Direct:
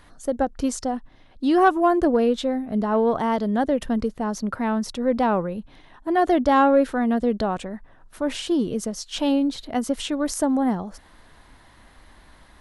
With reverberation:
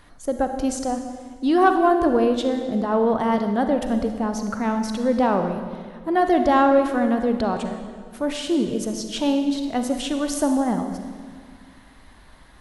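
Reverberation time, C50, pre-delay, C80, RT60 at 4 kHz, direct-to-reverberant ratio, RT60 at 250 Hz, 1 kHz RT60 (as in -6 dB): 1.8 s, 7.0 dB, 36 ms, 8.0 dB, 1.5 s, 6.0 dB, 2.2 s, 1.6 s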